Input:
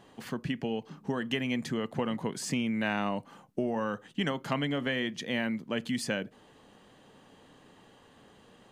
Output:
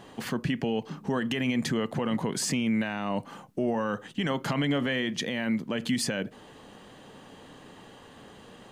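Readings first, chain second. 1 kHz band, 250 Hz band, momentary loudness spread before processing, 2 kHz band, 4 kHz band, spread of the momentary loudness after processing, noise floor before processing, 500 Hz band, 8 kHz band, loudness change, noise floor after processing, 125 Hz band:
+2.0 dB, +4.0 dB, 6 LU, +1.5 dB, +3.0 dB, 22 LU, -59 dBFS, +2.5 dB, +7.0 dB, +3.0 dB, -51 dBFS, +4.5 dB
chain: peak limiter -27 dBFS, peak gain reduction 11 dB; trim +8 dB

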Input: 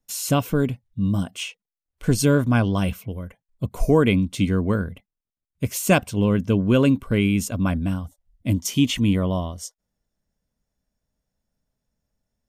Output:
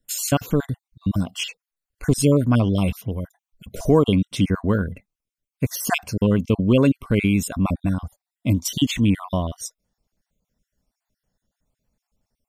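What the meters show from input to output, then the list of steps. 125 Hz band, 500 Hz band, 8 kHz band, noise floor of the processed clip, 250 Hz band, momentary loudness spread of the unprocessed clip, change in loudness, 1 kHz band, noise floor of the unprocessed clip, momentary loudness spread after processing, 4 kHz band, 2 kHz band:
+0.5 dB, +0.5 dB, +1.0 dB, under -85 dBFS, +0.5 dB, 14 LU, 0.0 dB, -0.5 dB, under -85 dBFS, 13 LU, +1.0 dB, -1.5 dB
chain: random holes in the spectrogram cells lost 39%; in parallel at -2 dB: compression, threshold -28 dBFS, peak gain reduction 15.5 dB

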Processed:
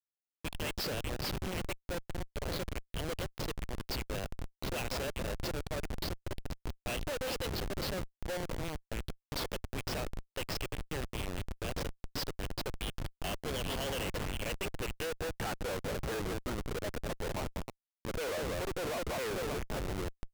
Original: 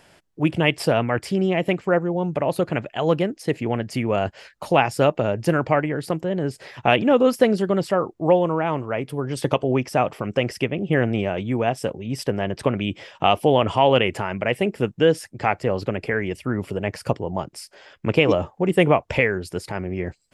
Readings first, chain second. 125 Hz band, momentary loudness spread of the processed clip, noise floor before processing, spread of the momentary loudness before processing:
-14.5 dB, 6 LU, -57 dBFS, 10 LU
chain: graphic EQ 500/1000/4000 Hz +8/-5/+6 dB; band-pass sweep 4.3 kHz -> 1.1 kHz, 14.10–15.94 s; on a send: echo whose repeats swap between lows and highs 194 ms, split 1.8 kHz, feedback 66%, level -10.5 dB; on the sum: Schmitt trigger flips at -36.5 dBFS

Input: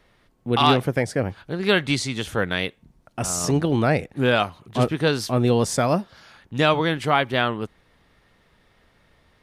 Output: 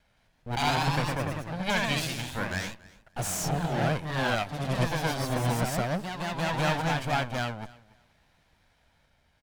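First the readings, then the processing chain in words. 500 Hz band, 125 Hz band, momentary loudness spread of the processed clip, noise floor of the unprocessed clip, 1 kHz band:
-10.0 dB, -4.5 dB, 8 LU, -62 dBFS, -5.5 dB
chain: comb filter that takes the minimum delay 1.3 ms; ever faster or slower copies 165 ms, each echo +1 st, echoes 3; feedback delay 283 ms, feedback 19%, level -22 dB; trim -7 dB

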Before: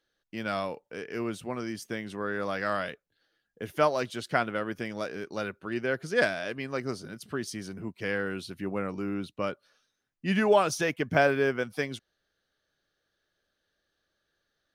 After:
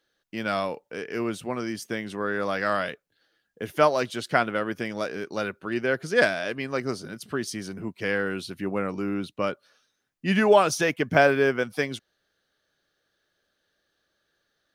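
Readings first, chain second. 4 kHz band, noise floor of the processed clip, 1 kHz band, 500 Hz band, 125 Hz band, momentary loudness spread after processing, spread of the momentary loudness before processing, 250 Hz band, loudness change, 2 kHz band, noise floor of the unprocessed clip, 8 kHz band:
+4.5 dB, -76 dBFS, +4.5 dB, +4.5 dB, +3.0 dB, 13 LU, 13 LU, +4.0 dB, +4.5 dB, +4.5 dB, -81 dBFS, +4.5 dB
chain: bass shelf 71 Hz -8.5 dB; trim +4.5 dB

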